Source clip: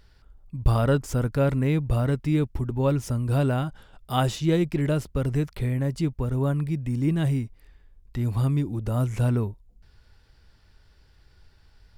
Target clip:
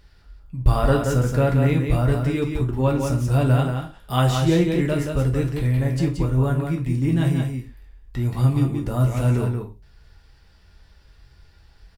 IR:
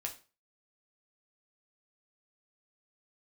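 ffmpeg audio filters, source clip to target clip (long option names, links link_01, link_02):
-filter_complex "[0:a]aecho=1:1:177:0.562[link_01];[1:a]atrim=start_sample=2205,atrim=end_sample=6615[link_02];[link_01][link_02]afir=irnorm=-1:irlink=0,volume=4dB"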